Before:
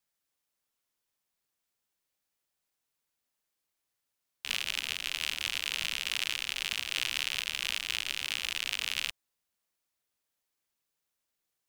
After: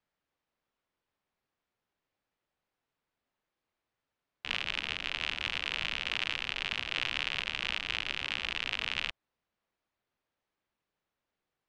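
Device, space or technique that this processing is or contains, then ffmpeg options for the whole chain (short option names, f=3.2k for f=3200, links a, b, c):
phone in a pocket: -af "lowpass=4k,highshelf=f=2.4k:g=-10.5,volume=6.5dB"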